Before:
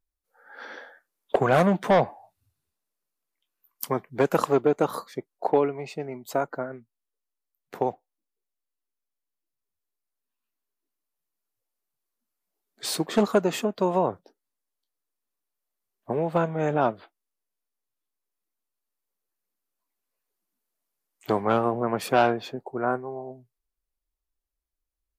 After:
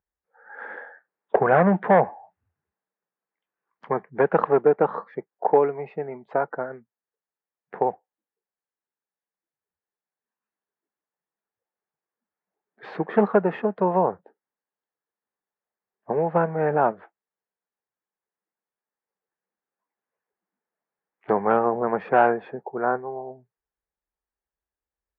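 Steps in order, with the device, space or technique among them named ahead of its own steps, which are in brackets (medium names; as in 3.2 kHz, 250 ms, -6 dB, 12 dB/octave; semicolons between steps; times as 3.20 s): bass cabinet (cabinet simulation 66–2100 Hz, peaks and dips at 110 Hz -8 dB, 190 Hz +4 dB, 270 Hz -5 dB, 460 Hz +5 dB, 840 Hz +6 dB, 1.7 kHz +6 dB)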